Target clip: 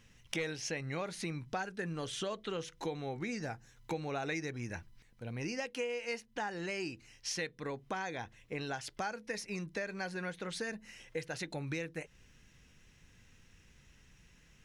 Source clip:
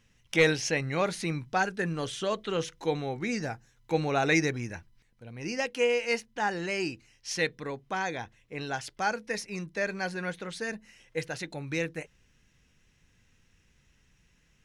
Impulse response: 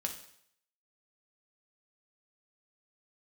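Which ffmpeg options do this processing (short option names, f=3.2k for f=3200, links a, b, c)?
-af "acompressor=threshold=-40dB:ratio=5,volume=3.5dB"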